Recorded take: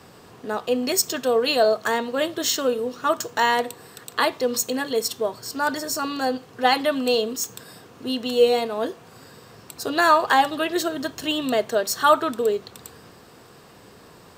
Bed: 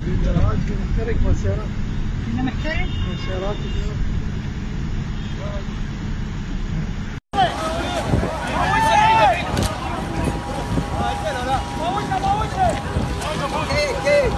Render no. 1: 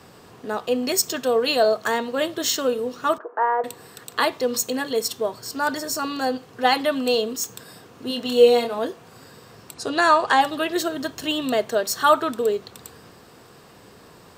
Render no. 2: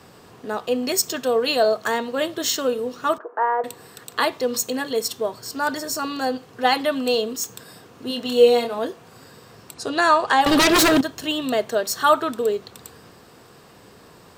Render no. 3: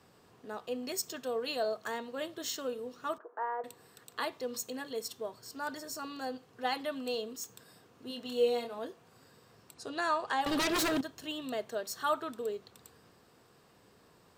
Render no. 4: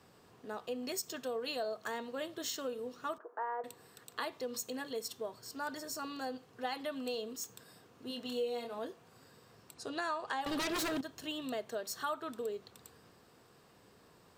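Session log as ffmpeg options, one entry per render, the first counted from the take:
-filter_complex "[0:a]asettb=1/sr,asplit=3[a][b][c];[a]atrim=end=3.184[d];[b]atrim=start=3.18:end=3.64,asetpts=PTS-STARTPTS,afade=t=in:d=0.004:c=qsin,afade=t=out:st=0.456:d=0.004:c=qsin,asuperpass=centerf=720:order=8:qfactor=0.61[e];[c]atrim=start=3.636[f];[d][e]acrossfade=d=0.004:c1=hsin:c2=qsin[g];[g][f]acrossfade=d=0.004:c1=qsin:c2=hsin,asettb=1/sr,asplit=3[h][i][j];[h]atrim=end=8.084[k];[i]atrim=start=8.08:end=8.79,asetpts=PTS-STARTPTS,afade=t=in:d=0.004:c=qsin,afade=t=out:st=0.706:d=0.004:c=qsin,asplit=2[l][m];[m]adelay=25,volume=-5dB[n];[l][n]amix=inputs=2:normalize=0,atrim=end_sample=31311[o];[j]atrim=start=8.786[p];[k][o]acrossfade=d=0.004:c1=hsin:c2=qsin[q];[q][p]acrossfade=d=0.004:c1=qsin:c2=hsin,asettb=1/sr,asplit=3[r][s][t];[r]atrim=end=9.744[u];[s]atrim=start=9.74:end=10.41,asetpts=PTS-STARTPTS,afade=t=in:d=0.004:c=qsin,afade=t=out:st=0.666:d=0.004:c=qsin,lowpass=f=10k:w=0.5412,lowpass=f=10k:w=1.3066[v];[t]atrim=start=10.406[w];[u][v]acrossfade=d=0.004:c1=hsin:c2=qsin[x];[x][w]acrossfade=d=0.004:c1=qsin:c2=hsin"
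-filter_complex "[0:a]asettb=1/sr,asplit=3[a][b][c];[a]atrim=end=10.464[d];[b]atrim=start=10.46:end=11.01,asetpts=PTS-STARTPTS,afade=t=in:d=0.004:c=qsin,afade=t=out:st=0.546:d=0.004:c=qsin,aeval=exprs='0.251*sin(PI/2*4.47*val(0)/0.251)':c=same[e];[c]atrim=start=11.006[f];[d][e]acrossfade=d=0.004:c1=hsin:c2=qsin[g];[g][f]acrossfade=d=0.004:c1=qsin:c2=hsin"
-af "volume=-14.5dB"
-af "acompressor=threshold=-35dB:ratio=3"

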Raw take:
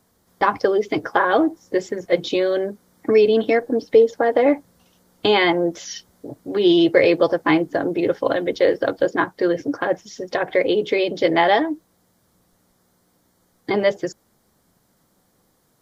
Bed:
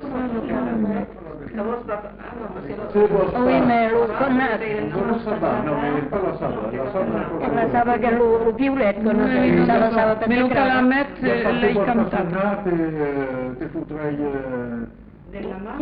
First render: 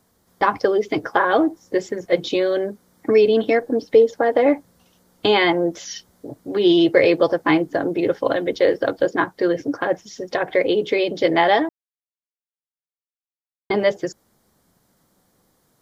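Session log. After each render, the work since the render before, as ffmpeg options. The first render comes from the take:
-filter_complex "[0:a]asplit=3[a][b][c];[a]atrim=end=11.69,asetpts=PTS-STARTPTS,afade=t=out:st=11.686:d=0.004:c=hsin[d];[b]atrim=start=11.69:end=13.7,asetpts=PTS-STARTPTS,volume=0[e];[c]atrim=start=13.7,asetpts=PTS-STARTPTS,afade=t=in:d=0.004:c=hsin[f];[d][e][f]concat=n=3:v=0:a=1"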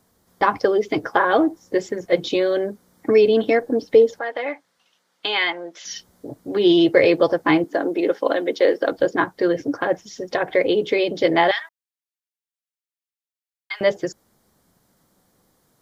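-filter_complex "[0:a]asettb=1/sr,asplit=3[a][b][c];[a]atrim=end=4.194[d];[b]atrim=start=4.19:end=5.85,asetpts=PTS-STARTPTS,afade=t=in:d=0.004:c=qsin,afade=t=out:st=1.656:d=0.004:c=qsin,bandpass=f=2.5k:t=q:w=0.78[e];[c]atrim=start=5.846[f];[d][e]acrossfade=d=0.004:c1=hsin:c2=qsin[g];[g][f]acrossfade=d=0.004:c1=qsin:c2=hsin,asettb=1/sr,asplit=3[h][i][j];[h]atrim=end=7.644[k];[i]atrim=start=7.64:end=8.92,asetpts=PTS-STARTPTS,afade=t=in:d=0.004:c=qsin,afade=t=out:st=1.276:d=0.004:c=qsin,highpass=f=230:w=0.5412,highpass=f=230:w=1.3066[l];[j]atrim=start=8.916[m];[k][l]acrossfade=d=0.004:c1=hsin:c2=qsin[n];[n][m]acrossfade=d=0.004:c1=qsin:c2=hsin,asettb=1/sr,asplit=3[o][p][q];[o]atrim=end=11.514[r];[p]atrim=start=11.51:end=13.81,asetpts=PTS-STARTPTS,afade=t=in:d=0.004:c=qsin,afade=t=out:st=2.296:d=0.004:c=qsin,highpass=f=1.4k:w=0.5412,highpass=f=1.4k:w=1.3066[s];[q]atrim=start=13.806[t];[r][s]acrossfade=d=0.004:c1=hsin:c2=qsin[u];[u][t]acrossfade=d=0.004:c1=qsin:c2=hsin"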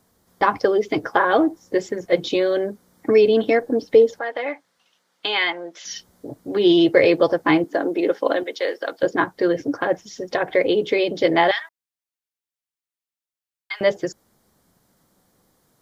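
-filter_complex "[0:a]asettb=1/sr,asplit=3[a][b][c];[a]atrim=end=8.434[d];[b]atrim=start=8.43:end=9.03,asetpts=PTS-STARTPTS,afade=t=in:d=0.004:c=qsin,afade=t=out:st=0.596:d=0.004:c=qsin,highpass=f=1.1k:p=1[e];[c]atrim=start=9.026[f];[d][e]acrossfade=d=0.004:c1=hsin:c2=qsin[g];[g][f]acrossfade=d=0.004:c1=qsin:c2=hsin"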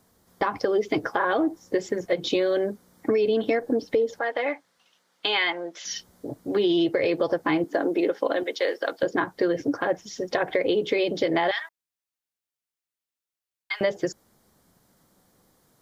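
-af "alimiter=limit=-10dB:level=0:latency=1:release=132,acompressor=threshold=-19dB:ratio=6"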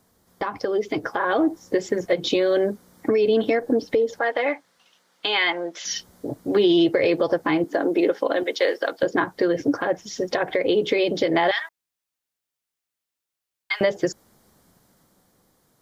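-af "alimiter=limit=-14dB:level=0:latency=1:release=327,dynaudnorm=f=100:g=21:m=4.5dB"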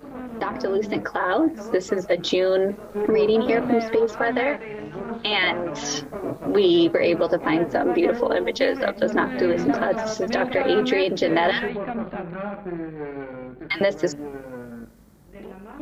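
-filter_complex "[1:a]volume=-10dB[a];[0:a][a]amix=inputs=2:normalize=0"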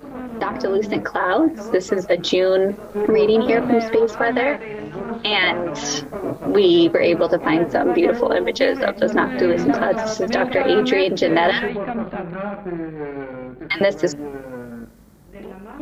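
-af "volume=3.5dB"

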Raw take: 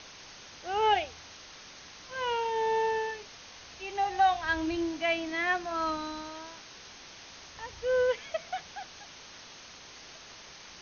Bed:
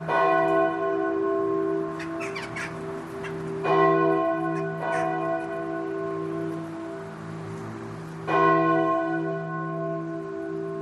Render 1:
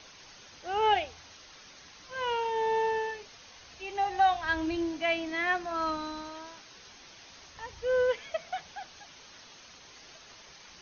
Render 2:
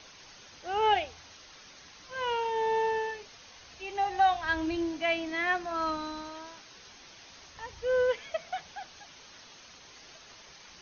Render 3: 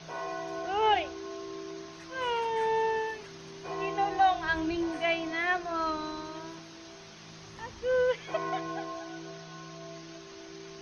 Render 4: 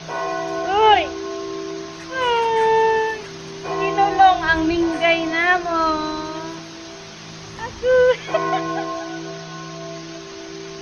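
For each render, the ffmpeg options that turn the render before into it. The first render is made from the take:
-af "afftdn=nr=6:nf=-50"
-af anull
-filter_complex "[1:a]volume=-15.5dB[a];[0:a][a]amix=inputs=2:normalize=0"
-af "volume=12dB,alimiter=limit=-3dB:level=0:latency=1"

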